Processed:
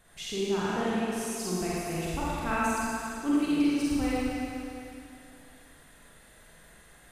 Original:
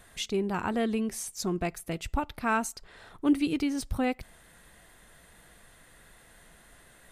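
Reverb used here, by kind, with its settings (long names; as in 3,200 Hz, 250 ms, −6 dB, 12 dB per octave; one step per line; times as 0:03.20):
four-comb reverb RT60 2.7 s, DRR −8 dB
level −7.5 dB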